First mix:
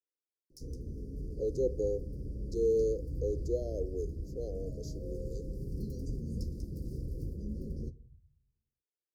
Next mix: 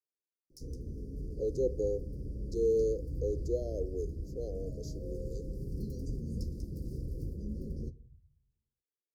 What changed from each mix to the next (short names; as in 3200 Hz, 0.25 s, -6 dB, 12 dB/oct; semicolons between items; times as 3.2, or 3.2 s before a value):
none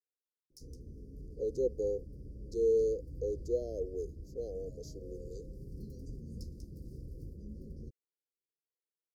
speech: send off; background -7.5 dB